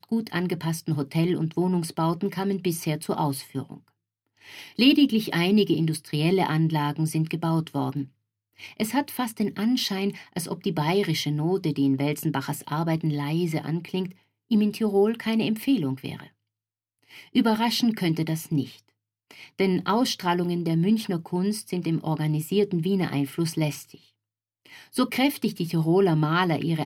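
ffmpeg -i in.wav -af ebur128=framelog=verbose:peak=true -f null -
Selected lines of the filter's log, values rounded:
Integrated loudness:
  I:         -25.2 LUFS
  Threshold: -35.7 LUFS
Loudness range:
  LRA:         4.0 LU
  Threshold: -46.0 LUFS
  LRA low:   -27.6 LUFS
  LRA high:  -23.6 LUFS
True peak:
  Peak:       -6.2 dBFS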